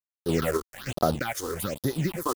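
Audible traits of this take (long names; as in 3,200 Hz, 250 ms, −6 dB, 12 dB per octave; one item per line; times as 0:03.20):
a quantiser's noise floor 6 bits, dither none
phaser sweep stages 6, 1.2 Hz, lowest notch 160–2,500 Hz
sample-and-hold tremolo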